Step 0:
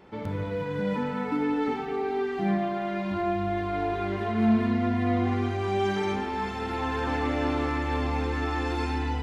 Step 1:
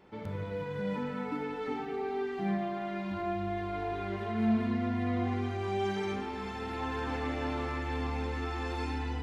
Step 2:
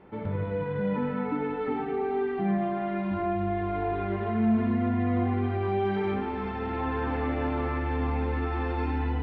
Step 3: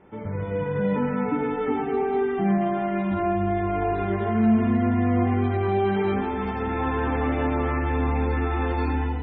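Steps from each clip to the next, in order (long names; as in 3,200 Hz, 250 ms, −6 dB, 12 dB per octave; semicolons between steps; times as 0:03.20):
hum removal 58.55 Hz, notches 32; level −5.5 dB
in parallel at +2.5 dB: brickwall limiter −26.5 dBFS, peak gain reduction 8 dB; on the sum: high-frequency loss of the air 460 metres
automatic gain control gain up to 5 dB; MP3 16 kbit/s 24,000 Hz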